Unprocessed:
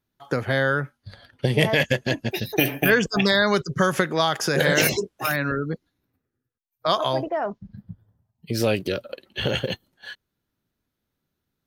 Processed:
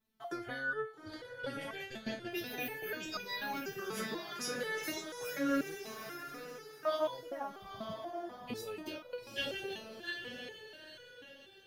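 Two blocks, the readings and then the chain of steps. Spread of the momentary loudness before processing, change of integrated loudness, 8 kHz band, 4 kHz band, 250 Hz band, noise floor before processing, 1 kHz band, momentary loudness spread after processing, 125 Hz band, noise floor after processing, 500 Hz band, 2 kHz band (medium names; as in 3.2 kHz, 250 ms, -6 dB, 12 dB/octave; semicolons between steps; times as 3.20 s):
14 LU, -17.0 dB, -14.5 dB, -15.5 dB, -14.5 dB, -81 dBFS, -14.5 dB, 12 LU, -27.0 dB, -56 dBFS, -15.5 dB, -16.0 dB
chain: peak limiter -15.5 dBFS, peak gain reduction 11.5 dB; compression 4:1, threshold -34 dBFS, peak gain reduction 11.5 dB; on a send: echo that smears into a reverb 842 ms, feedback 42%, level -6 dB; on the sum: resonator arpeggio 4.1 Hz 220–490 Hz; trim +11.5 dB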